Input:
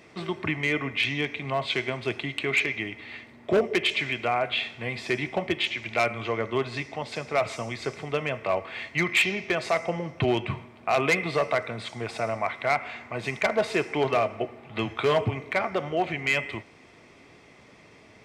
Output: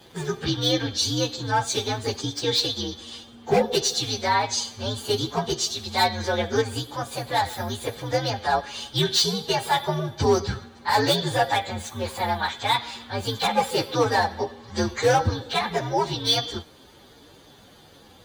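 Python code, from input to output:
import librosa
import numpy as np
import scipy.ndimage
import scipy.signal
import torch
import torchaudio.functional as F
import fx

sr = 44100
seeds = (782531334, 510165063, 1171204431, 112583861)

y = fx.partial_stretch(x, sr, pct=125)
y = y * librosa.db_to_amplitude(6.5)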